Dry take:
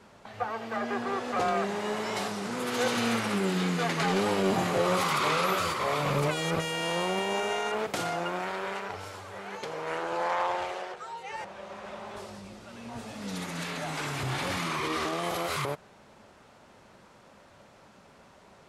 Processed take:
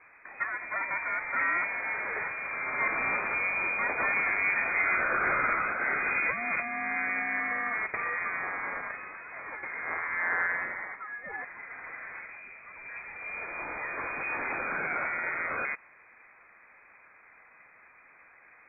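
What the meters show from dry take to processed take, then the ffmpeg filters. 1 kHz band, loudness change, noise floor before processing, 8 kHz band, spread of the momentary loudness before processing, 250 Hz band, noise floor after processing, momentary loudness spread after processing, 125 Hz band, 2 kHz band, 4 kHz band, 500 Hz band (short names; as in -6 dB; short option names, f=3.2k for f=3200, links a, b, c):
-3.0 dB, 0.0 dB, -56 dBFS, under -40 dB, 15 LU, -13.5 dB, -57 dBFS, 15 LU, -18.0 dB, +7.0 dB, under -40 dB, -10.5 dB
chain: -af "tiltshelf=f=970:g=-3,lowpass=f=2.2k:t=q:w=0.5098,lowpass=f=2.2k:t=q:w=0.6013,lowpass=f=2.2k:t=q:w=0.9,lowpass=f=2.2k:t=q:w=2.563,afreqshift=-2600"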